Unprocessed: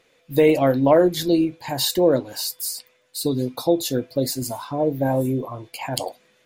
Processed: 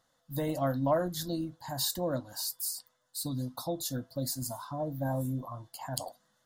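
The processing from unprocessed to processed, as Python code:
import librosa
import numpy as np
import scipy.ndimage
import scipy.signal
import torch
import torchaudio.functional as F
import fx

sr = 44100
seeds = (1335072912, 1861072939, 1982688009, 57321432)

y = fx.dynamic_eq(x, sr, hz=850.0, q=3.7, threshold_db=-40.0, ratio=4.0, max_db=-6)
y = fx.fixed_phaser(y, sr, hz=1000.0, stages=4)
y = y * 10.0 ** (-6.0 / 20.0)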